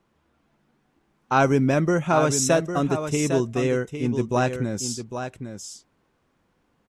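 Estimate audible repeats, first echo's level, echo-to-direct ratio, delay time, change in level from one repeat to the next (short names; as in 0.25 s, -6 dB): 1, -8.5 dB, -8.5 dB, 0.804 s, no steady repeat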